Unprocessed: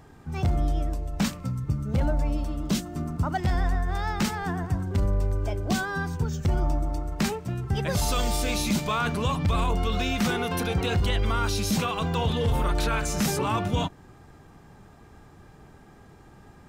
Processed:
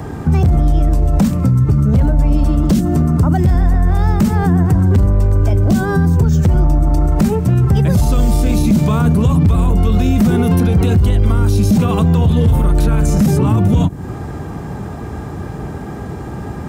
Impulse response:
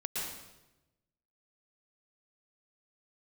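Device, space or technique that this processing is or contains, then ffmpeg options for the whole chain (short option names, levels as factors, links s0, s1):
mastering chain: -filter_complex "[0:a]highpass=f=49:w=0.5412,highpass=f=49:w=1.3066,equalizer=f=3500:t=o:w=2:g=-3,acrossover=split=280|870|7700[s0][s1][s2][s3];[s0]acompressor=threshold=0.0562:ratio=4[s4];[s1]acompressor=threshold=0.00501:ratio=4[s5];[s2]acompressor=threshold=0.00447:ratio=4[s6];[s3]acompressor=threshold=0.00447:ratio=4[s7];[s4][s5][s6][s7]amix=inputs=4:normalize=0,acompressor=threshold=0.02:ratio=1.5,asoftclip=type=tanh:threshold=0.0708,tiltshelf=f=860:g=3.5,asoftclip=type=hard:threshold=0.0631,alimiter=level_in=25.1:limit=0.891:release=50:level=0:latency=1,volume=0.562"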